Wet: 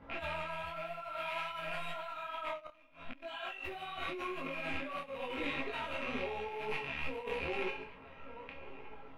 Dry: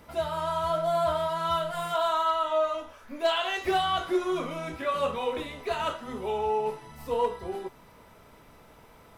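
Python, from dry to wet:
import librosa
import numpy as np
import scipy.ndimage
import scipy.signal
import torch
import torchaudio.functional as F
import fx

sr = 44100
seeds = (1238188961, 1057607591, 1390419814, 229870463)

y = fx.rattle_buzz(x, sr, strikes_db=-49.0, level_db=-22.0)
y = fx.comb_fb(y, sr, f0_hz=270.0, decay_s=0.48, harmonics='all', damping=0.0, mix_pct=90)
y = fx.echo_feedback(y, sr, ms=1179, feedback_pct=39, wet_db=-18.5)
y = fx.env_lowpass(y, sr, base_hz=2500.0, full_db=-40.0)
y = fx.low_shelf(y, sr, hz=500.0, db=-10.0, at=(1.02, 1.59))
y = y + 10.0 ** (-15.0 / 20.0) * np.pad(y, (int(138 * sr / 1000.0), 0))[:len(y)]
y = fx.over_compress(y, sr, threshold_db=-49.0, ratio=-1.0)
y = fx.gate_flip(y, sr, shuts_db=-41.0, range_db=-24, at=(2.57, 3.22), fade=0.02)
y = fx.peak_eq(y, sr, hz=7100.0, db=-10.5, octaves=1.7)
y = fx.detune_double(y, sr, cents=31)
y = y * 10.0 ** (13.5 / 20.0)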